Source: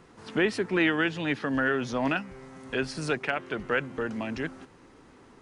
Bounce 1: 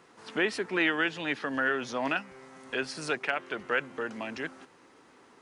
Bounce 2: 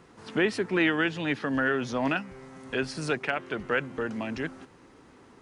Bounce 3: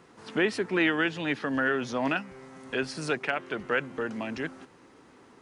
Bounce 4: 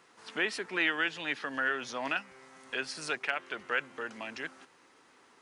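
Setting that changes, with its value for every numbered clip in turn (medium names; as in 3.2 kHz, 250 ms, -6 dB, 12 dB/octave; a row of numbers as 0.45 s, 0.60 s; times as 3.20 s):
high-pass, cutoff frequency: 480 Hz, 40 Hz, 160 Hz, 1.3 kHz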